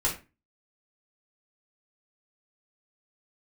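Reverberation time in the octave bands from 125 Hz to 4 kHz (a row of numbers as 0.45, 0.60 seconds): 0.40, 0.35, 0.30, 0.30, 0.30, 0.20 seconds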